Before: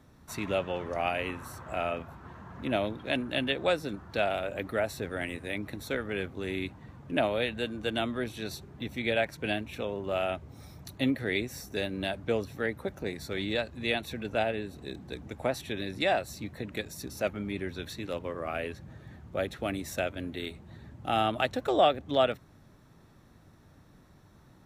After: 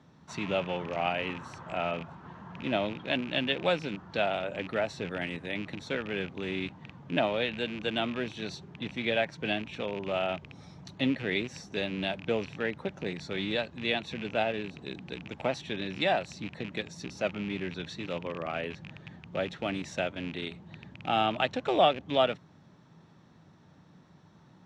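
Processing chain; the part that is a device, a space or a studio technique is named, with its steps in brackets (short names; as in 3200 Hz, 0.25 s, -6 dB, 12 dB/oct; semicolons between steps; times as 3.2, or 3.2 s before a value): car door speaker with a rattle (rattling part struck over -41 dBFS, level -31 dBFS; speaker cabinet 110–6600 Hz, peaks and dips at 170 Hz +8 dB, 900 Hz +4 dB, 3100 Hz +4 dB); gain -1 dB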